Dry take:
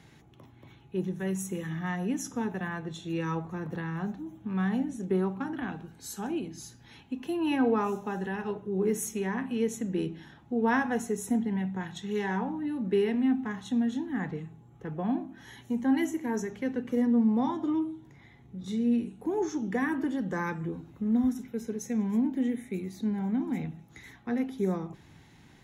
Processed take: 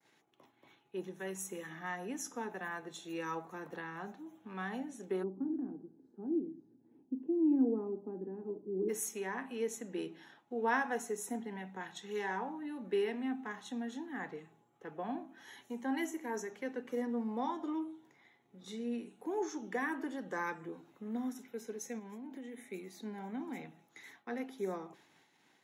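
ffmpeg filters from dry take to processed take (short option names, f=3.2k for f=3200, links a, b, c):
-filter_complex "[0:a]asettb=1/sr,asplit=3[a][b][c];[a]atrim=end=2.644[d];[b]atrim=start=2.64:end=3.69,asetpts=PTS-STARTPTS,afade=t=in:d=0.004:c=qsin,afade=t=out:st=1.046:d=0.004:c=qsin,highshelf=f=8.8k:g=9[e];[c]atrim=start=3.686[f];[d][e]acrossfade=d=0.004:c1=hsin:c2=qsin[g];[g][f]acrossfade=d=0.004:c1=qsin:c2=hsin,asplit=3[h][i][j];[h]afade=t=out:st=5.22:d=0.02[k];[i]lowpass=f=300:t=q:w=3.3,afade=t=in:st=5.22:d=0.02,afade=t=out:st=8.88:d=0.02[l];[j]afade=t=in:st=8.88:d=0.02[m];[k][l][m]amix=inputs=3:normalize=0,asplit=3[n][o][p];[n]afade=t=out:st=21.98:d=0.02[q];[o]acompressor=threshold=-32dB:ratio=6:attack=3.2:release=140:knee=1:detection=peak,afade=t=in:st=21.98:d=0.02,afade=t=out:st=22.66:d=0.02[r];[p]afade=t=in:st=22.66:d=0.02[s];[q][r][s]amix=inputs=3:normalize=0,agate=range=-33dB:threshold=-50dB:ratio=3:detection=peak,highpass=400,adynamicequalizer=threshold=0.00141:dfrequency=3200:dqfactor=2:tfrequency=3200:tqfactor=2:attack=5:release=100:ratio=0.375:range=2:mode=cutabove:tftype=bell,volume=-3.5dB"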